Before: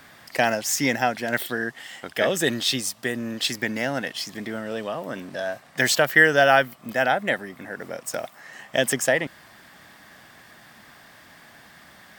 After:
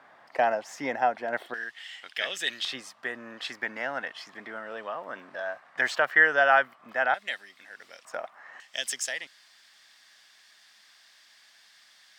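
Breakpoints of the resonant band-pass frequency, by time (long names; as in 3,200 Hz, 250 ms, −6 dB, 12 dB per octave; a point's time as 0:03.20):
resonant band-pass, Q 1.3
820 Hz
from 0:01.54 3,000 Hz
from 0:02.65 1,200 Hz
from 0:07.14 4,000 Hz
from 0:08.05 1,100 Hz
from 0:08.60 4,800 Hz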